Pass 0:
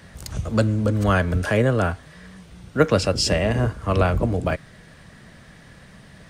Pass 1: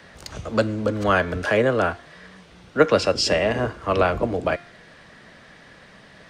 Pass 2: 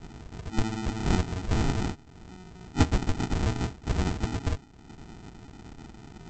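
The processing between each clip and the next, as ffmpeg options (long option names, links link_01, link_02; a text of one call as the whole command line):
ffmpeg -i in.wav -filter_complex "[0:a]acrossover=split=260 6200:gain=0.251 1 0.224[link_01][link_02][link_03];[link_01][link_02][link_03]amix=inputs=3:normalize=0,bandreject=frequency=348.7:width_type=h:width=4,bandreject=frequency=697.4:width_type=h:width=4,bandreject=frequency=1046.1:width_type=h:width=4,bandreject=frequency=1394.8:width_type=h:width=4,bandreject=frequency=1743.5:width_type=h:width=4,bandreject=frequency=2092.2:width_type=h:width=4,bandreject=frequency=2440.9:width_type=h:width=4,bandreject=frequency=2789.6:width_type=h:width=4,bandreject=frequency=3138.3:width_type=h:width=4,bandreject=frequency=3487:width_type=h:width=4,bandreject=frequency=3835.7:width_type=h:width=4,bandreject=frequency=4184.4:width_type=h:width=4,bandreject=frequency=4533.1:width_type=h:width=4,bandreject=frequency=4881.8:width_type=h:width=4,bandreject=frequency=5230.5:width_type=h:width=4,bandreject=frequency=5579.2:width_type=h:width=4,bandreject=frequency=5927.9:width_type=h:width=4,bandreject=frequency=6276.6:width_type=h:width=4,bandreject=frequency=6625.3:width_type=h:width=4,bandreject=frequency=6974:width_type=h:width=4,bandreject=frequency=7322.7:width_type=h:width=4,bandreject=frequency=7671.4:width_type=h:width=4,bandreject=frequency=8020.1:width_type=h:width=4,bandreject=frequency=8368.8:width_type=h:width=4,bandreject=frequency=8717.5:width_type=h:width=4,bandreject=frequency=9066.2:width_type=h:width=4,bandreject=frequency=9414.9:width_type=h:width=4,bandreject=frequency=9763.6:width_type=h:width=4,bandreject=frequency=10112.3:width_type=h:width=4,bandreject=frequency=10461:width_type=h:width=4,bandreject=frequency=10809.7:width_type=h:width=4,bandreject=frequency=11158.4:width_type=h:width=4,bandreject=frequency=11507.1:width_type=h:width=4,bandreject=frequency=11855.8:width_type=h:width=4,volume=2.5dB" out.wav
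ffmpeg -i in.wav -af "acompressor=mode=upward:threshold=-29dB:ratio=2.5,aresample=16000,acrusher=samples=29:mix=1:aa=0.000001,aresample=44100,volume=-6dB" out.wav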